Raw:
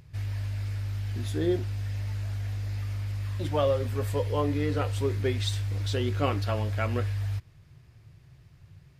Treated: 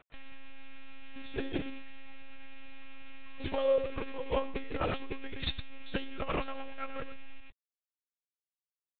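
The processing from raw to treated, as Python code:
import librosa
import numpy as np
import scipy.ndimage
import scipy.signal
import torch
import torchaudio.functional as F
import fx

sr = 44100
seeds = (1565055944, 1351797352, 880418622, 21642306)

p1 = fx.rattle_buzz(x, sr, strikes_db=-29.0, level_db=-33.0)
p2 = fx.highpass(p1, sr, hz=60.0, slope=6)
p3 = fx.low_shelf(p2, sr, hz=180.0, db=-11.5)
p4 = fx.hum_notches(p3, sr, base_hz=60, count=9)
p5 = fx.quant_dither(p4, sr, seeds[0], bits=8, dither='none')
p6 = p5 + fx.echo_single(p5, sr, ms=111, db=-8.0, dry=0)
p7 = fx.lpc_monotone(p6, sr, seeds[1], pitch_hz=270.0, order=16)
p8 = fx.transformer_sat(p7, sr, knee_hz=130.0)
y = p8 * 10.0 ** (2.5 / 20.0)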